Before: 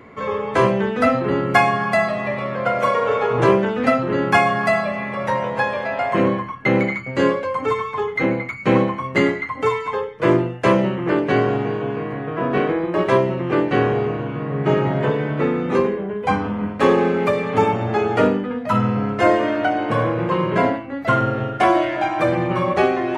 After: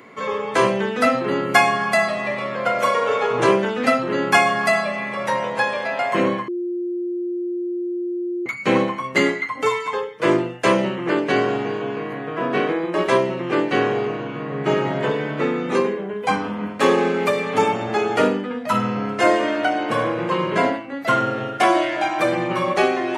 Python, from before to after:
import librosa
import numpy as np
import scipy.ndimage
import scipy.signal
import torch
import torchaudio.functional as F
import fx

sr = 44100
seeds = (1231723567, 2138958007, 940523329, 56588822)

y = fx.edit(x, sr, fx.bleep(start_s=6.48, length_s=1.98, hz=352.0, db=-20.5), tone=tone)
y = scipy.signal.sosfilt(scipy.signal.butter(2, 180.0, 'highpass', fs=sr, output='sos'), y)
y = fx.high_shelf(y, sr, hz=3300.0, db=11.5)
y = F.gain(torch.from_numpy(y), -1.5).numpy()